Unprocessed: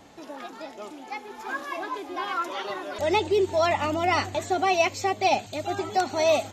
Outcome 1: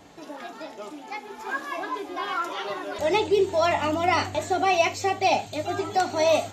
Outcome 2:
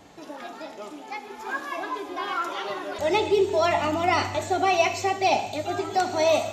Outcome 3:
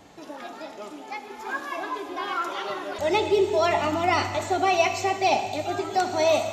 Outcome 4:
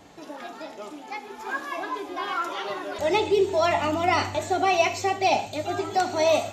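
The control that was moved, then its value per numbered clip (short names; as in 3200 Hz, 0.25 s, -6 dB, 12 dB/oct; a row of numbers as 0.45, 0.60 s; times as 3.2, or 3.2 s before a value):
non-linear reverb, gate: 0.1, 0.27, 0.44, 0.18 s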